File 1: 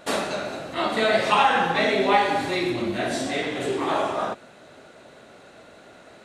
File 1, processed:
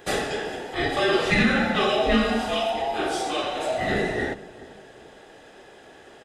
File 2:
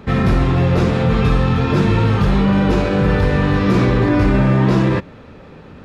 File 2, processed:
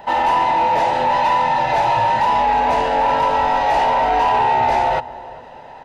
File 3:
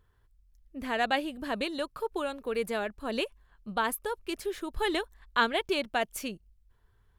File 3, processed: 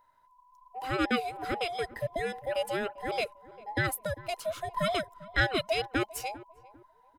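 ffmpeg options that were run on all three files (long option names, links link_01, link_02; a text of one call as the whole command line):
ffmpeg -i in.wav -filter_complex "[0:a]afftfilt=real='real(if(between(b,1,1008),(2*floor((b-1)/48)+1)*48-b,b),0)':imag='imag(if(between(b,1,1008),(2*floor((b-1)/48)+1)*48-b,b),0)*if(between(b,1,1008),-1,1)':win_size=2048:overlap=0.75,asplit=2[link_01][link_02];[link_02]adelay=397,lowpass=frequency=840:poles=1,volume=-17dB,asplit=2[link_03][link_04];[link_04]adelay=397,lowpass=frequency=840:poles=1,volume=0.37,asplit=2[link_05][link_06];[link_06]adelay=397,lowpass=frequency=840:poles=1,volume=0.37[link_07];[link_03][link_05][link_07]amix=inputs=3:normalize=0[link_08];[link_01][link_08]amix=inputs=2:normalize=0,asoftclip=type=tanh:threshold=-10dB" out.wav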